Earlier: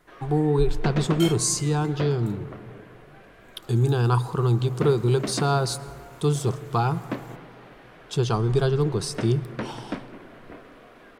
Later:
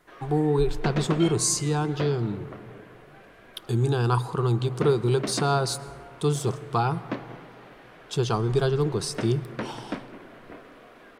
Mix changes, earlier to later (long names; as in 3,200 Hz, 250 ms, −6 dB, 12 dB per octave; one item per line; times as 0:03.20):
second sound: add high-frequency loss of the air 260 metres
master: add low-shelf EQ 150 Hz −5 dB